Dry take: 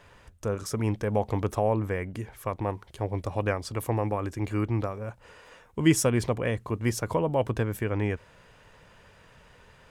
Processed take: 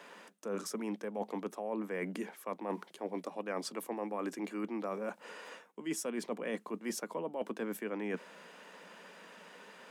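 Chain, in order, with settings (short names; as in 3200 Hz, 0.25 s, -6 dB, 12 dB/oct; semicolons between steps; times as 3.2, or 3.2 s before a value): steep high-pass 180 Hz 72 dB/oct; reverse; compressor 12:1, threshold -37 dBFS, peak gain reduction 21 dB; reverse; gain +3 dB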